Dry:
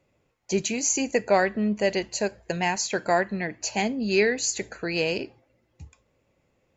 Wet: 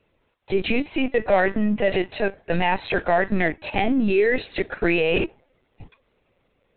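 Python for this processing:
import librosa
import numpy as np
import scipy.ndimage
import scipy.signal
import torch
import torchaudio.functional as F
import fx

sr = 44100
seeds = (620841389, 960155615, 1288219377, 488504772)

p1 = fx.law_mismatch(x, sr, coded='A')
p2 = scipy.signal.sosfilt(scipy.signal.butter(2, 130.0, 'highpass', fs=sr, output='sos'), p1)
p3 = fx.over_compress(p2, sr, threshold_db=-30.0, ratio=-0.5)
p4 = p2 + (p3 * 10.0 ** (1.0 / 20.0))
p5 = np.clip(p4, -10.0 ** (-12.5 / 20.0), 10.0 ** (-12.5 / 20.0))
p6 = fx.lpc_vocoder(p5, sr, seeds[0], excitation='pitch_kept', order=16)
y = p6 * 10.0 ** (2.5 / 20.0)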